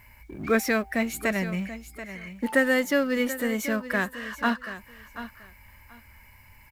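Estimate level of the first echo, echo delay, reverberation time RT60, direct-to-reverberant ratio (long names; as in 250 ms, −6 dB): −13.0 dB, 733 ms, no reverb audible, no reverb audible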